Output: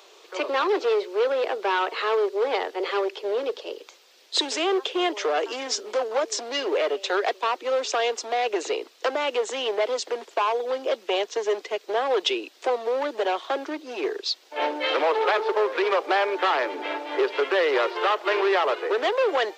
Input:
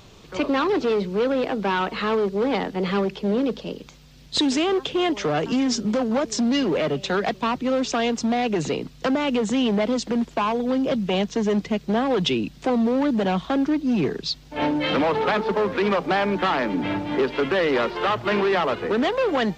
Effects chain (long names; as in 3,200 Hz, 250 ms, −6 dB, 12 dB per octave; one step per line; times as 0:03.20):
Butterworth high-pass 360 Hz 48 dB per octave